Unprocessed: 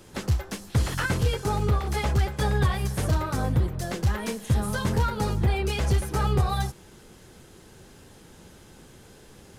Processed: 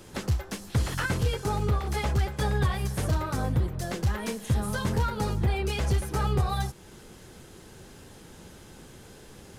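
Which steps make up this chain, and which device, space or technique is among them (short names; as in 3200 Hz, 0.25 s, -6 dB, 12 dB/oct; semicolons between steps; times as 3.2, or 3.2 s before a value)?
parallel compression (in parallel at -2 dB: compressor, threshold -37 dBFS, peak gain reduction 18.5 dB); on the sum: gain -3.5 dB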